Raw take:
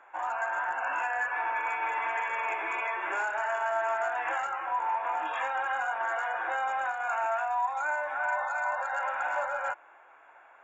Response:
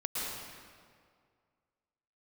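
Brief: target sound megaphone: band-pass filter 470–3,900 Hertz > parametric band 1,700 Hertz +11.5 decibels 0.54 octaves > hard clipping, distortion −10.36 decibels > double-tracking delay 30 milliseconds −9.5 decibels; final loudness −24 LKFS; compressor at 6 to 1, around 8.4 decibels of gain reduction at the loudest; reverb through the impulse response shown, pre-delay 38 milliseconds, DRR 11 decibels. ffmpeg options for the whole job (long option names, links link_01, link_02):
-filter_complex "[0:a]acompressor=threshold=-35dB:ratio=6,asplit=2[link_01][link_02];[1:a]atrim=start_sample=2205,adelay=38[link_03];[link_02][link_03]afir=irnorm=-1:irlink=0,volume=-16dB[link_04];[link_01][link_04]amix=inputs=2:normalize=0,highpass=470,lowpass=3900,equalizer=frequency=1700:width_type=o:width=0.54:gain=11.5,asoftclip=type=hard:threshold=-32dB,asplit=2[link_05][link_06];[link_06]adelay=30,volume=-9.5dB[link_07];[link_05][link_07]amix=inputs=2:normalize=0,volume=10dB"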